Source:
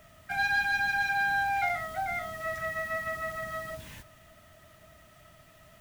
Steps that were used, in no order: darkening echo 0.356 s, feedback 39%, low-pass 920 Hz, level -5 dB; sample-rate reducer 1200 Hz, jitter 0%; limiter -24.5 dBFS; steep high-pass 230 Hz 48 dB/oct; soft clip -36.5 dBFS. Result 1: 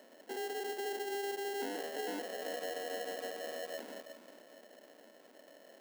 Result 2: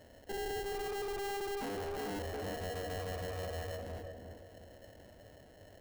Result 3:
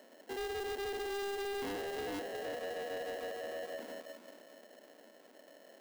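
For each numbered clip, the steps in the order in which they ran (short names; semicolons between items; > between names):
limiter > soft clip > darkening echo > sample-rate reducer > steep high-pass; steep high-pass > sample-rate reducer > darkening echo > limiter > soft clip; darkening echo > sample-rate reducer > limiter > steep high-pass > soft clip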